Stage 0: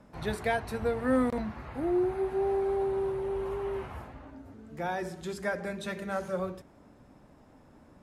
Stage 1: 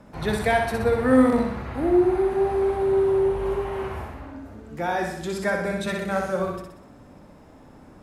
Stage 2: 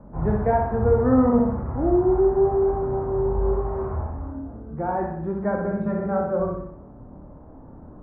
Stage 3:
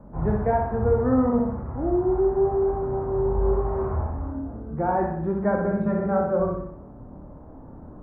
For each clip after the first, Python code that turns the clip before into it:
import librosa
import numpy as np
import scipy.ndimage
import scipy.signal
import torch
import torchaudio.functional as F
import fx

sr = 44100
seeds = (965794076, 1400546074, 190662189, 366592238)

y1 = fx.echo_feedback(x, sr, ms=62, feedback_pct=53, wet_db=-4.0)
y1 = y1 * 10.0 ** (6.5 / 20.0)
y2 = scipy.signal.sosfilt(scipy.signal.butter(4, 1200.0, 'lowpass', fs=sr, output='sos'), y1)
y2 = fx.low_shelf(y2, sr, hz=120.0, db=9.5)
y2 = fx.chorus_voices(y2, sr, voices=2, hz=0.33, base_ms=25, depth_ms=1.2, mix_pct=35)
y2 = y2 * 10.0 ** (3.5 / 20.0)
y3 = fx.rider(y2, sr, range_db=4, speed_s=2.0)
y3 = y3 * 10.0 ** (-1.5 / 20.0)